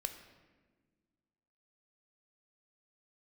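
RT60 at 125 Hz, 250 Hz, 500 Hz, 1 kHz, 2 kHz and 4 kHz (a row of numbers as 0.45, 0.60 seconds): 2.1, 2.2, 1.7, 1.2, 1.2, 0.90 seconds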